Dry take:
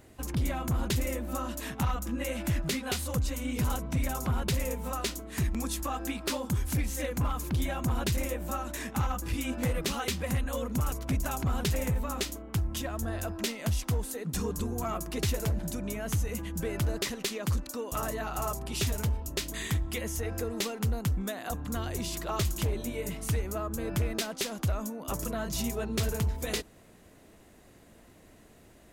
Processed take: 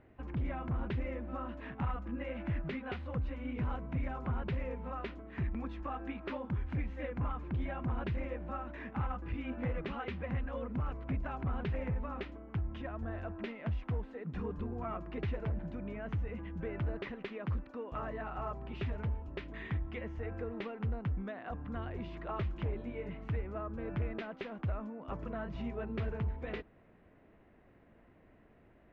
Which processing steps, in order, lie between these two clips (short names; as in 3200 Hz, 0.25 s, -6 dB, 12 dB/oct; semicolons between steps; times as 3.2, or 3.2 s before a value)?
LPF 2400 Hz 24 dB/oct; gain -6 dB